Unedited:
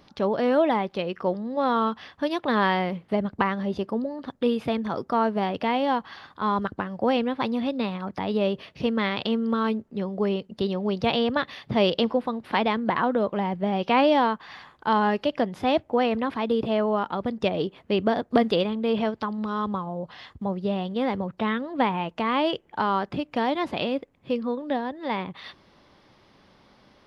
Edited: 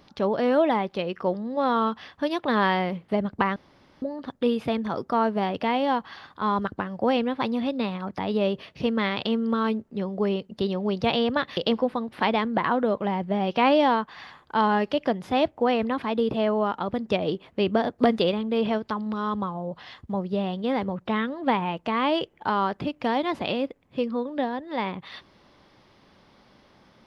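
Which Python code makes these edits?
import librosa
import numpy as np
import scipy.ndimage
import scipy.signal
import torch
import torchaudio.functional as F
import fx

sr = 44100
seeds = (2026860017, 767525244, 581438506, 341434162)

y = fx.edit(x, sr, fx.room_tone_fill(start_s=3.56, length_s=0.46),
    fx.cut(start_s=11.57, length_s=0.32), tone=tone)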